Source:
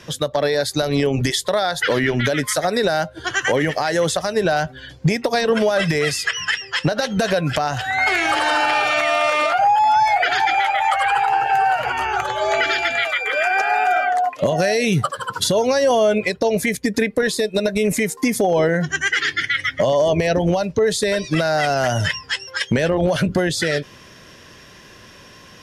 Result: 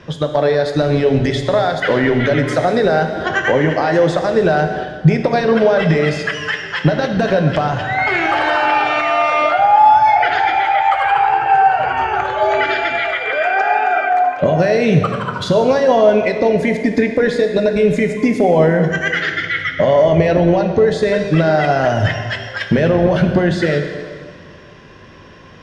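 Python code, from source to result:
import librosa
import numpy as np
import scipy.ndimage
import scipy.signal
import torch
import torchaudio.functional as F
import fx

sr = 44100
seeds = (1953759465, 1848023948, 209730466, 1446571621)

y = fx.spacing_loss(x, sr, db_at_10k=26)
y = fx.rev_plate(y, sr, seeds[0], rt60_s=1.9, hf_ratio=0.95, predelay_ms=0, drr_db=4.5)
y = fx.band_squash(y, sr, depth_pct=40, at=(2.28, 4.84))
y = y * librosa.db_to_amplitude(5.0)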